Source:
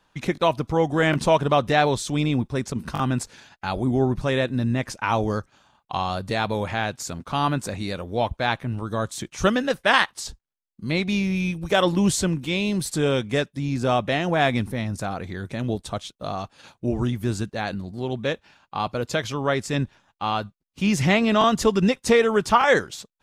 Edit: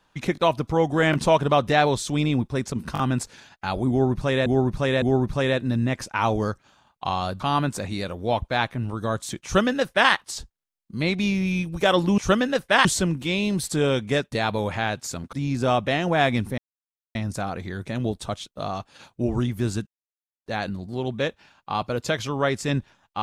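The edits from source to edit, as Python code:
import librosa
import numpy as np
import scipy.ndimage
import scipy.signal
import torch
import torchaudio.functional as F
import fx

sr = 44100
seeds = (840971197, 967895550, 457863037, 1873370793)

y = fx.edit(x, sr, fx.repeat(start_s=3.9, length_s=0.56, count=3),
    fx.move(start_s=6.28, length_s=1.01, to_s=13.54),
    fx.duplicate(start_s=9.33, length_s=0.67, to_s=12.07),
    fx.insert_silence(at_s=14.79, length_s=0.57),
    fx.insert_silence(at_s=17.51, length_s=0.59), tone=tone)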